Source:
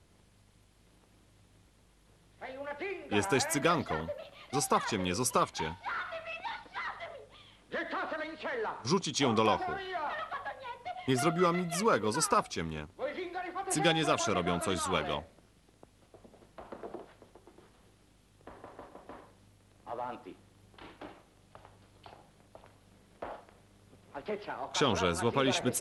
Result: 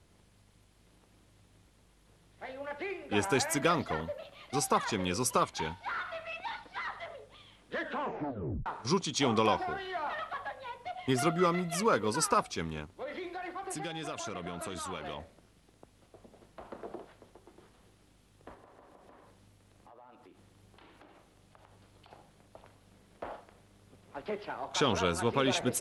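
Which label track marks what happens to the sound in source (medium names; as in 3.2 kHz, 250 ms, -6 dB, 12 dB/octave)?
7.810000	7.810000	tape stop 0.85 s
12.920000	15.200000	compression, threshold -35 dBFS
18.540000	22.110000	compression, threshold -53 dBFS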